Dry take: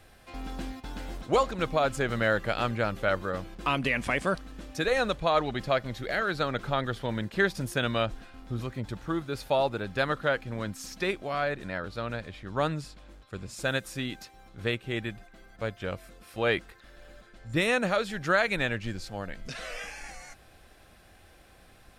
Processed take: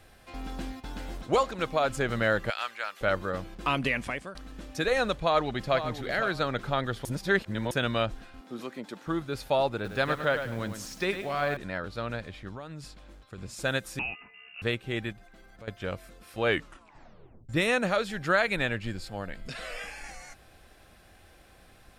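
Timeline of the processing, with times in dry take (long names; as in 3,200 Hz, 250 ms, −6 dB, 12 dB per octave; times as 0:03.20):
0:01.35–0:01.89: low-shelf EQ 210 Hz −6.5 dB
0:02.50–0:03.01: high-pass filter 1,200 Hz
0:03.88–0:04.35: fade out, to −21.5 dB
0:05.17–0:05.77: delay throw 510 ms, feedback 20%, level −10 dB
0:07.05–0:07.71: reverse
0:08.41–0:09.07: high-pass filter 220 Hz 24 dB per octave
0:09.74–0:11.57: feedback echo at a low word length 104 ms, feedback 35%, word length 8 bits, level −8 dB
0:12.48–0:13.38: downward compressor 10 to 1, threshold −36 dBFS
0:13.99–0:14.62: voice inversion scrambler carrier 2,800 Hz
0:15.12–0:15.68: downward compressor 2.5 to 1, threshold −49 dBFS
0:16.47: tape stop 1.02 s
0:18.21–0:20.04: notch filter 6,000 Hz, Q 5.7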